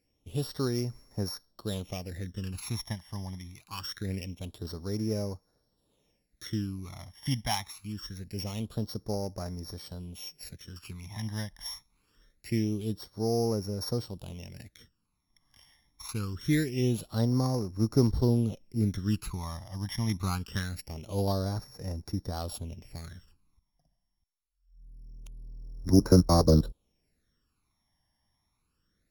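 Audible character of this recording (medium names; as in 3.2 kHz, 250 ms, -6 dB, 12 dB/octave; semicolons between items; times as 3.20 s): a buzz of ramps at a fixed pitch in blocks of 8 samples; phasing stages 12, 0.24 Hz, lowest notch 430–3100 Hz; AAC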